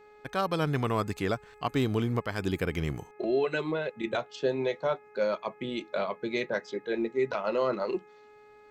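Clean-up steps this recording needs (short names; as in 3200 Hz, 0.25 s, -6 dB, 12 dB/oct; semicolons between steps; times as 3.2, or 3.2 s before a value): de-hum 420.1 Hz, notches 6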